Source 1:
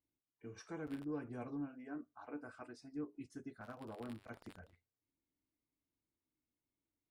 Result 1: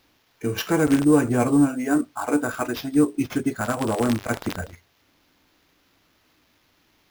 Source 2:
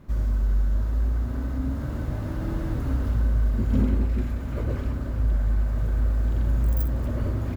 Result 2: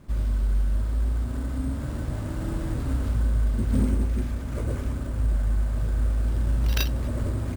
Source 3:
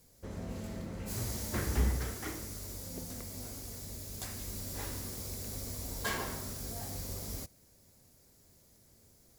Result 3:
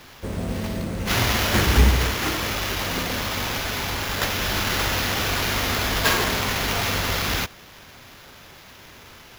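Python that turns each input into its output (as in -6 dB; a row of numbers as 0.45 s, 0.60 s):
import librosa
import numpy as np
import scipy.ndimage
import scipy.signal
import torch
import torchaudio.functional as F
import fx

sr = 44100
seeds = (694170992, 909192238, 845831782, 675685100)

y = fx.high_shelf(x, sr, hz=6500.0, db=8.0)
y = fx.sample_hold(y, sr, seeds[0], rate_hz=8600.0, jitter_pct=0)
y = y * 10.0 ** (-24 / 20.0) / np.sqrt(np.mean(np.square(y)))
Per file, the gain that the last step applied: +25.0 dB, -1.0 dB, +13.0 dB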